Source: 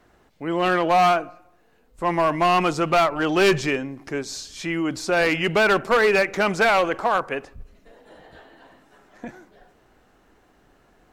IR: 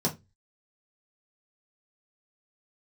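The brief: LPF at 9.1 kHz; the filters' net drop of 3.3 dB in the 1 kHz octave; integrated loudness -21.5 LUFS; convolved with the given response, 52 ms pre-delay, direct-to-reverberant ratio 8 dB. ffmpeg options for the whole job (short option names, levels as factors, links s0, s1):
-filter_complex "[0:a]lowpass=9100,equalizer=f=1000:t=o:g=-5,asplit=2[s0][s1];[1:a]atrim=start_sample=2205,adelay=52[s2];[s1][s2]afir=irnorm=-1:irlink=0,volume=0.158[s3];[s0][s3]amix=inputs=2:normalize=0,volume=0.891"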